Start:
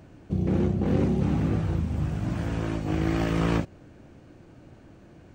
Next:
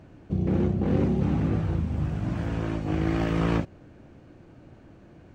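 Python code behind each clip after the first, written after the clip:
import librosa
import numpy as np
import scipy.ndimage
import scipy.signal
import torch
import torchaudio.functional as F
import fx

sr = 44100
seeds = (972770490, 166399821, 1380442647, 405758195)

y = fx.high_shelf(x, sr, hz=6000.0, db=-9.5)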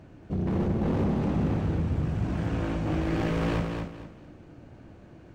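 y = np.clip(x, -10.0 ** (-24.5 / 20.0), 10.0 ** (-24.5 / 20.0))
y = fx.echo_feedback(y, sr, ms=230, feedback_pct=28, wet_db=-5)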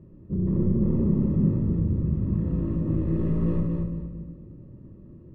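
y = scipy.signal.lfilter(np.full(58, 1.0 / 58), 1.0, x)
y = fx.room_shoebox(y, sr, seeds[0], volume_m3=1000.0, walls='mixed', distance_m=1.0)
y = y * 10.0 ** (2.0 / 20.0)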